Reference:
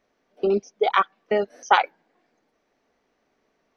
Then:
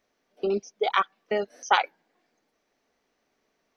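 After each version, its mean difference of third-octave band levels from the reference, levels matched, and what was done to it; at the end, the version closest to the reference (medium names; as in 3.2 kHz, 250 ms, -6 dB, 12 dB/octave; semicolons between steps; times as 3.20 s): 1.0 dB: treble shelf 2.9 kHz +8 dB; trim -5 dB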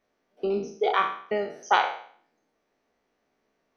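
4.0 dB: spectral sustain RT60 0.53 s; trim -6 dB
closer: first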